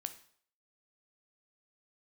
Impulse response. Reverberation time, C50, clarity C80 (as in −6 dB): 0.60 s, 13.0 dB, 17.0 dB